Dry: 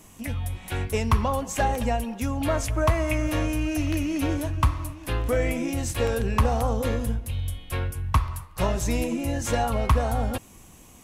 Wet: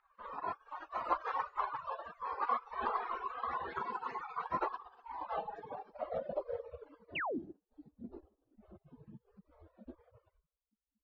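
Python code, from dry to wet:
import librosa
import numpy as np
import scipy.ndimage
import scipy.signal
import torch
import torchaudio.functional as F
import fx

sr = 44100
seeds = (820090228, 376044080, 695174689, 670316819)

y = fx.octave_mirror(x, sr, pivot_hz=430.0)
y = scipy.signal.sosfilt(scipy.signal.butter(4, 5400.0, 'lowpass', fs=sr, output='sos'), y)
y = fx.high_shelf(y, sr, hz=2400.0, db=6.0)
y = fx.room_shoebox(y, sr, seeds[0], volume_m3=250.0, walls='mixed', distance_m=0.38)
y = fx.dynamic_eq(y, sr, hz=1800.0, q=3.7, threshold_db=-35.0, ratio=4.0, max_db=5)
y = fx.spec_gate(y, sr, threshold_db=-30, keep='weak')
y = fx.filter_sweep_lowpass(y, sr, from_hz=1100.0, to_hz=220.0, start_s=4.82, end_s=8.35, q=4.7)
y = fx.spec_paint(y, sr, seeds[1], shape='fall', start_s=7.15, length_s=0.24, low_hz=210.0, high_hz=3100.0, level_db=-47.0)
y = fx.dereverb_blind(y, sr, rt60_s=1.3)
y = F.gain(torch.from_numpy(y), 10.5).numpy()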